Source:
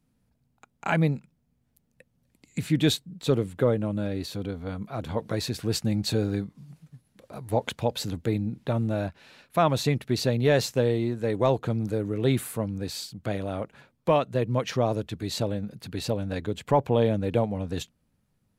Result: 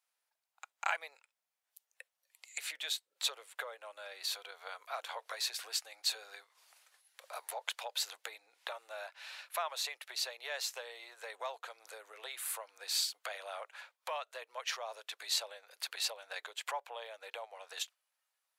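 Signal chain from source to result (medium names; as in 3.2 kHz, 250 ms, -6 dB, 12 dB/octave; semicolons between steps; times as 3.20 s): spectral noise reduction 8 dB; compression 6:1, threshold -33 dBFS, peak gain reduction 15.5 dB; Bessel high-pass 1.1 kHz, order 8; trim +6 dB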